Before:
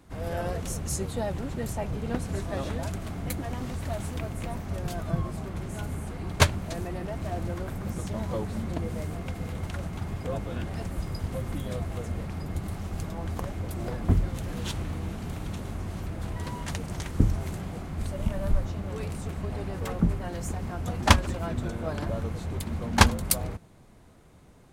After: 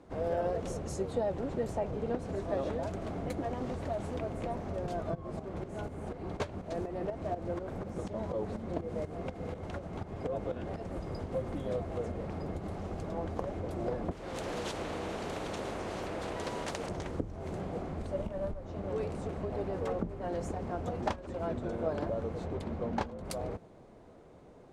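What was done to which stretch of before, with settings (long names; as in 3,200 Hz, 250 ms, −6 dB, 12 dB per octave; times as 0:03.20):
0:05.15–0:10.99: shaped tremolo saw up 4.1 Hz, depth 70%
0:14.11–0:16.89: every bin compressed towards the loudest bin 2 to 1
0:22.44–0:23.24: high-shelf EQ 8,500 Hz → 5,200 Hz −9 dB
whole clip: low-pass filter 7,200 Hz 12 dB per octave; downward compressor 12 to 1, threshold −30 dBFS; parametric band 500 Hz +13.5 dB 2.1 octaves; level −7 dB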